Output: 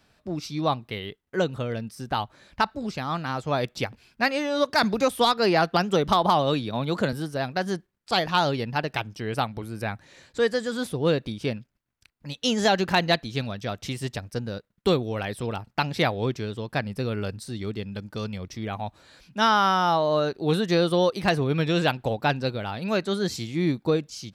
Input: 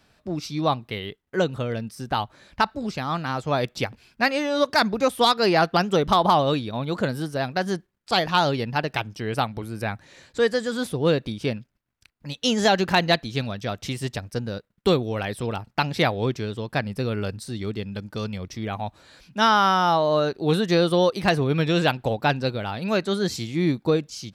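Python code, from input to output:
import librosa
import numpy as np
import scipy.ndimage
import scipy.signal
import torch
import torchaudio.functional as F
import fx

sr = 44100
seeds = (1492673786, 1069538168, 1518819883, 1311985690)

y = fx.band_squash(x, sr, depth_pct=40, at=(4.83, 7.13))
y = y * 10.0 ** (-2.0 / 20.0)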